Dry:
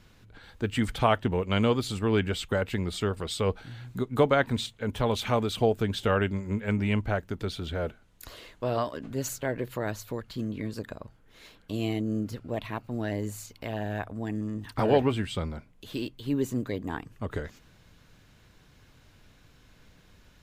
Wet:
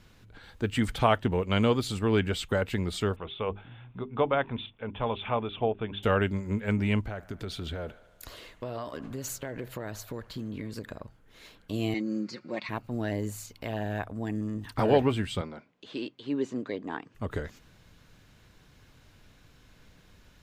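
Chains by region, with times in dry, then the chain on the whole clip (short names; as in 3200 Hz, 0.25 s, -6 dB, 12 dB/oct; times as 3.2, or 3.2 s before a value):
3.16–6.03 rippled Chebyshev low-pass 3600 Hz, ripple 6 dB + notches 50/100/150/200/250/300/350/400 Hz
7.04–11.03 compressor 10:1, threshold -31 dBFS + band-limited delay 74 ms, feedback 72%, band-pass 1200 Hz, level -16.5 dB
11.94–12.69 speaker cabinet 270–6800 Hz, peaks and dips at 270 Hz +4 dB, 420 Hz -5 dB, 710 Hz -7 dB, 2200 Hz +8 dB, 3100 Hz -8 dB, 4500 Hz +10 dB + comb 5.5 ms
15.41–17.15 BPF 250–6500 Hz + air absorption 65 m
whole clip: dry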